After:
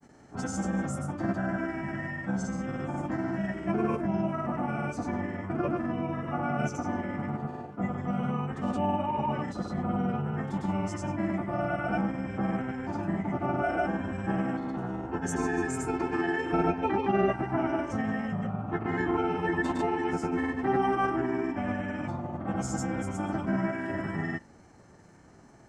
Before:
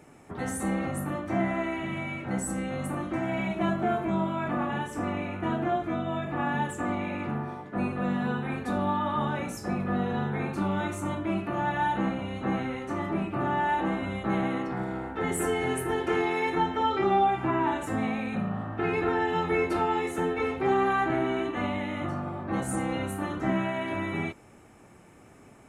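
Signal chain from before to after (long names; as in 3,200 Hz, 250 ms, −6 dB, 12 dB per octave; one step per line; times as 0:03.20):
granular cloud, pitch spread up and down by 0 semitones
formants moved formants −4 semitones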